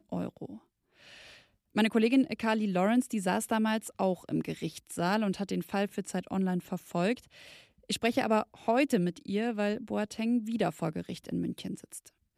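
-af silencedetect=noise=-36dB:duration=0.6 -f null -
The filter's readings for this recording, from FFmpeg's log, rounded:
silence_start: 0.54
silence_end: 1.76 | silence_duration: 1.22
silence_start: 7.14
silence_end: 7.90 | silence_duration: 0.75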